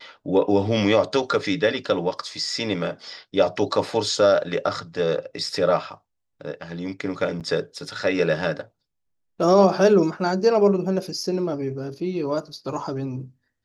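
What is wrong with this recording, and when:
7.4–7.41 gap 7.4 ms

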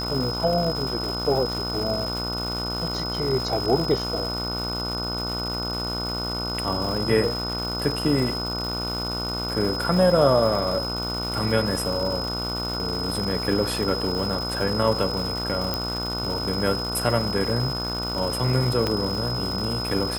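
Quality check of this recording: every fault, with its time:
buzz 60 Hz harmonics 25 -31 dBFS
crackle 420/s -29 dBFS
tone 5100 Hz -29 dBFS
15.74 pop -10 dBFS
18.87 pop -10 dBFS

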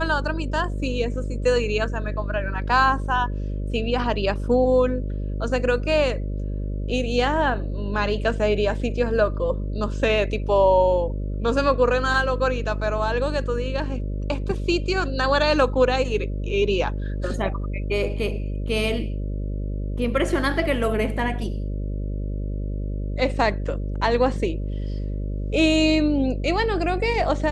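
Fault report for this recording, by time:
buzz 50 Hz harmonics 12 -27 dBFS

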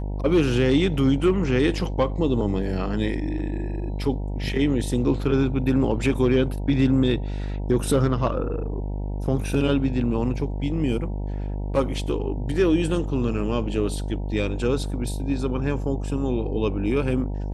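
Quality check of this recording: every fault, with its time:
buzz 50 Hz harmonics 19 -28 dBFS

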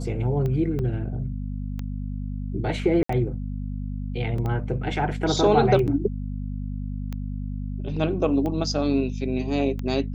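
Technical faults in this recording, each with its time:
hum 50 Hz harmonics 5 -30 dBFS
tick 45 rpm -19 dBFS
0.79 gap 4.7 ms
3.03–3.09 gap 64 ms
4.38 gap 3.4 ms
5.87–5.88 gap 8.2 ms

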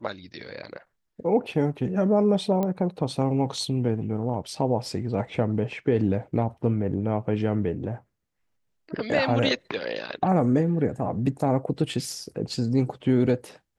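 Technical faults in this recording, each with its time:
2.63 pop -15 dBFS

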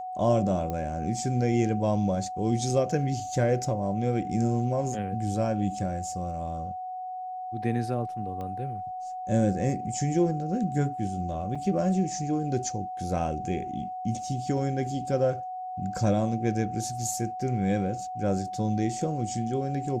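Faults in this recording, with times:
tone 740 Hz -33 dBFS
0.7 pop -20 dBFS
8.41 pop -26 dBFS
11.55–11.56 gap 5.2 ms

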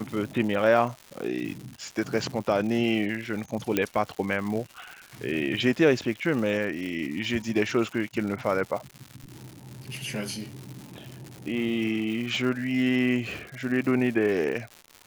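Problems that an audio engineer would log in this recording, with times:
crackle 240/s -34 dBFS
3.77 pop -9 dBFS

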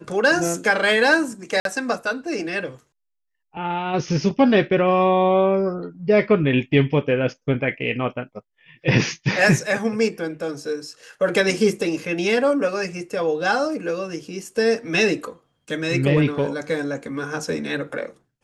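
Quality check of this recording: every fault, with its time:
1.6–1.65 gap 52 ms

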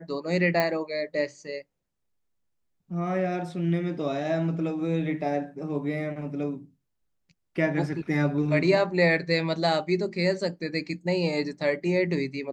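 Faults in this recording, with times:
0.6 pop -11 dBFS

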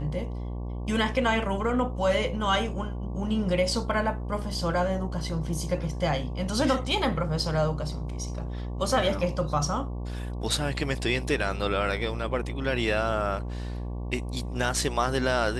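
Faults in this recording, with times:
buzz 60 Hz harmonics 19 -33 dBFS

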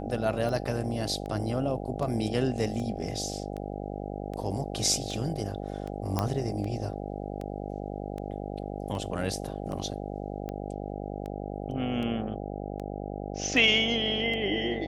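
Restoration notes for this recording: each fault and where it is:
buzz 50 Hz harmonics 16 -36 dBFS
tick 78 rpm
6.19 pop -13 dBFS

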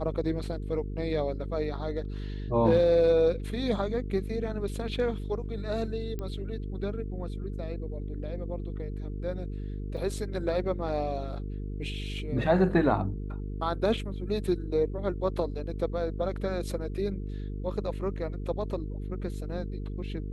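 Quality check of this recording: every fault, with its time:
buzz 50 Hz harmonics 9 -35 dBFS
6.19 pop -23 dBFS
9.97 gap 4 ms

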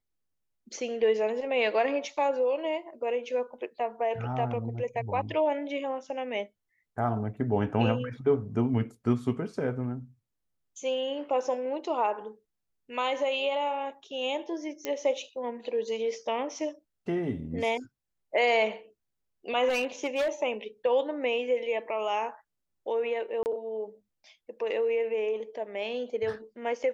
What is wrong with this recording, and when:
14.85 pop -16 dBFS
19.68–20.3 clipped -24 dBFS
23.43–23.46 gap 29 ms

